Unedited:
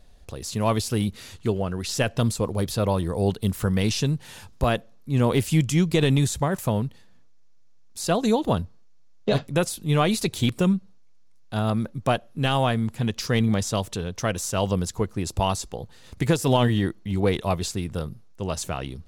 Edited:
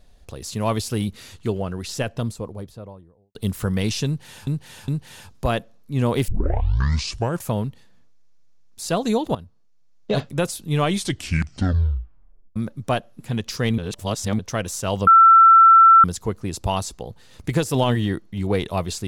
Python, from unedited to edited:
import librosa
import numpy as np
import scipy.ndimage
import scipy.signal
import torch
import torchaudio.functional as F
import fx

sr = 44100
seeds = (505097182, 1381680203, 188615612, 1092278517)

y = fx.studio_fade_out(x, sr, start_s=1.55, length_s=1.8)
y = fx.edit(y, sr, fx.repeat(start_s=4.06, length_s=0.41, count=3),
    fx.tape_start(start_s=5.46, length_s=1.18),
    fx.fade_in_from(start_s=8.53, length_s=0.8, floor_db=-15.5),
    fx.tape_stop(start_s=9.98, length_s=1.76),
    fx.cut(start_s=12.38, length_s=0.52),
    fx.reverse_span(start_s=13.48, length_s=0.61),
    fx.insert_tone(at_s=14.77, length_s=0.97, hz=1340.0, db=-7.0), tone=tone)